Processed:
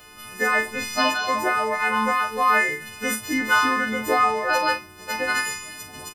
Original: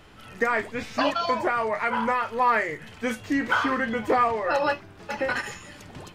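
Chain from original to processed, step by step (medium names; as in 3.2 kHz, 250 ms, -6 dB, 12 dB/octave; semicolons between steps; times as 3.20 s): partials quantised in pitch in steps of 3 st; treble shelf 11 kHz +10.5 dB; doubling 41 ms -8.5 dB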